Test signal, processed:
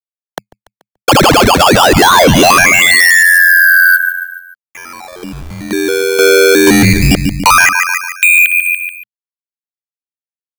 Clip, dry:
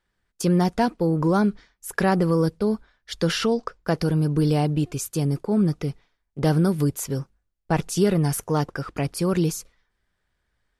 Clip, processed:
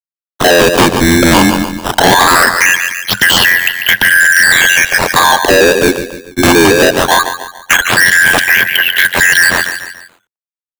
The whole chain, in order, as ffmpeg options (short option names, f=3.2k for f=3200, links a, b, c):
-filter_complex "[0:a]afftfilt=real='real(if(lt(b,272),68*(eq(floor(b/68),0)*3+eq(floor(b/68),1)*0+eq(floor(b/68),2)*1+eq(floor(b/68),3)*2)+mod(b,68),b),0)':imag='imag(if(lt(b,272),68*(eq(floor(b/68),0)*3+eq(floor(b/68),1)*0+eq(floor(b/68),2)*1+eq(floor(b/68),3)*2)+mod(b,68),b),0)':win_size=2048:overlap=0.75,acrusher=bits=8:mix=0:aa=0.000001,equalizer=f=160:t=o:w=0.33:g=12,equalizer=f=3.15k:t=o:w=0.33:g=11,equalizer=f=6.3k:t=o:w=0.33:g=-7,acrusher=samples=13:mix=1:aa=0.000001:lfo=1:lforange=20.8:lforate=0.2,asplit=2[a][b];[b]aecho=0:1:144|288|432|576:0.188|0.0829|0.0365|0.016[c];[a][c]amix=inputs=2:normalize=0,acrossover=split=96|340|1100|5900[d][e][f][g][h];[d]acompressor=threshold=-37dB:ratio=4[i];[e]acompressor=threshold=-22dB:ratio=4[j];[f]acompressor=threshold=-23dB:ratio=4[k];[g]acompressor=threshold=-26dB:ratio=4[l];[h]acompressor=threshold=-35dB:ratio=4[m];[i][j][k][l][m]amix=inputs=5:normalize=0,lowshelf=f=320:g=-4.5,volume=15.5dB,asoftclip=hard,volume=-15.5dB,aeval=exprs='val(0)*sin(2*PI*44*n/s)':c=same,asoftclip=type=tanh:threshold=-17.5dB,apsyclip=27.5dB,volume=-2.5dB"